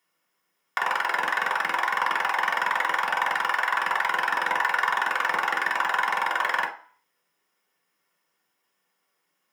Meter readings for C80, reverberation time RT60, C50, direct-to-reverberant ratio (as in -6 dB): 14.0 dB, 0.45 s, 9.5 dB, -3.5 dB